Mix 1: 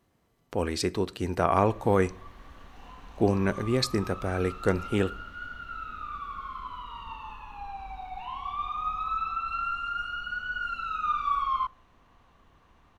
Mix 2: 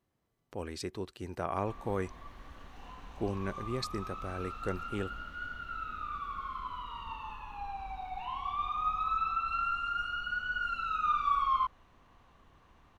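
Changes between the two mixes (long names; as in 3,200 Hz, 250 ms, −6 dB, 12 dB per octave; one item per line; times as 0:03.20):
speech −8.0 dB
reverb: off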